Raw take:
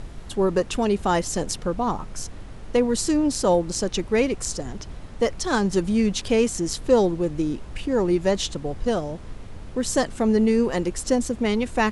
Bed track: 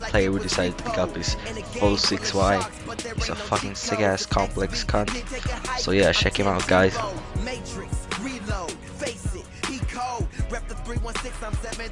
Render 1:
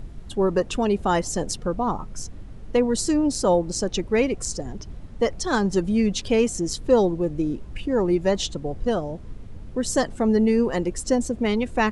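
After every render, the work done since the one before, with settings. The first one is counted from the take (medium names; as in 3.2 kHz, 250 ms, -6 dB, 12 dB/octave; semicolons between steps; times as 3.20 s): noise reduction 9 dB, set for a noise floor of -39 dBFS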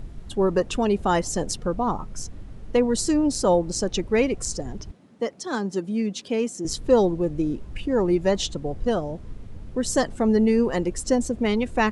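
4.91–6.65 s: ladder high-pass 160 Hz, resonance 25%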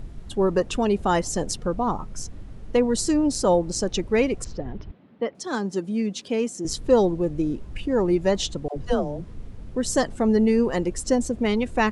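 4.44–5.35 s: low-pass 3.5 kHz 24 dB/octave; 8.68–9.61 s: phase dispersion lows, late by 81 ms, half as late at 430 Hz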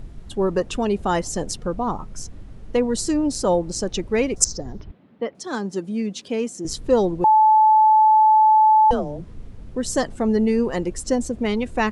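4.36–4.81 s: resonant high shelf 4.1 kHz +13.5 dB, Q 3; 7.24–8.91 s: bleep 867 Hz -10.5 dBFS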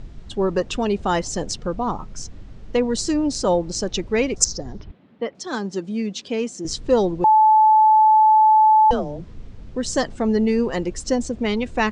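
Bessel low-pass 4.9 kHz, order 8; treble shelf 3.3 kHz +9 dB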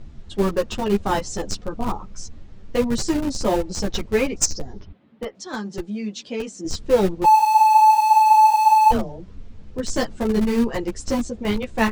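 in parallel at -5 dB: Schmitt trigger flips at -17.5 dBFS; on the sum: three-phase chorus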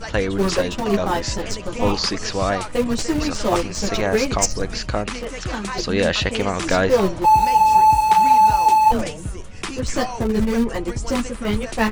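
add bed track -0.5 dB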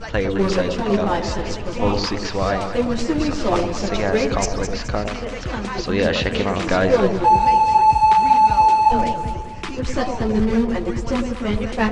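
distance through air 100 m; echo whose repeats swap between lows and highs 106 ms, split 800 Hz, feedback 66%, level -5.5 dB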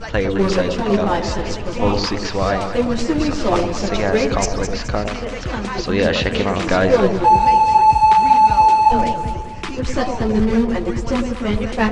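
trim +2 dB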